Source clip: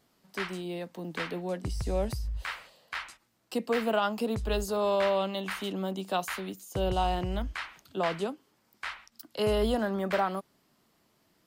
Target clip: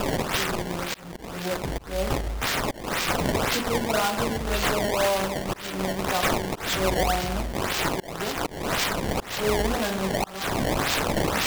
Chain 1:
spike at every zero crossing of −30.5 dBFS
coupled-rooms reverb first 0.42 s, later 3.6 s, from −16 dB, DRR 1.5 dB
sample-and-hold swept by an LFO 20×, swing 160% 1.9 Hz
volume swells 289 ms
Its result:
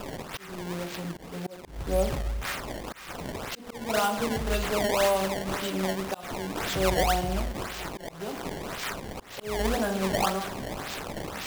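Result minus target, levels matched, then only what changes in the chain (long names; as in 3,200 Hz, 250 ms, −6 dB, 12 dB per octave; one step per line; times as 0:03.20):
spike at every zero crossing: distortion −11 dB
change: spike at every zero crossing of −19 dBFS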